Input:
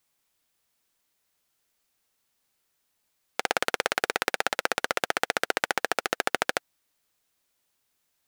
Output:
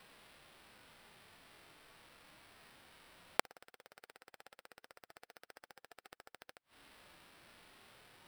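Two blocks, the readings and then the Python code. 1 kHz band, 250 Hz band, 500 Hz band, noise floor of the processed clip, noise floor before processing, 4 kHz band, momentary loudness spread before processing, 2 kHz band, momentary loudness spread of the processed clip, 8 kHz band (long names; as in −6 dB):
−19.5 dB, −18.5 dB, −20.0 dB, below −85 dBFS, −76 dBFS, −20.5 dB, 3 LU, −22.5 dB, 5 LU, −19.5 dB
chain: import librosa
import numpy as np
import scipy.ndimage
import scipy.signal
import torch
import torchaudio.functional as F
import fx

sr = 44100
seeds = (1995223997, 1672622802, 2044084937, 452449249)

y = fx.sample_hold(x, sr, seeds[0], rate_hz=6700.0, jitter_pct=0)
y = fx.gate_flip(y, sr, shuts_db=-15.0, range_db=-37)
y = fx.hpss(y, sr, part='percussive', gain_db=-17)
y = y * 10.0 ** (18.0 / 20.0)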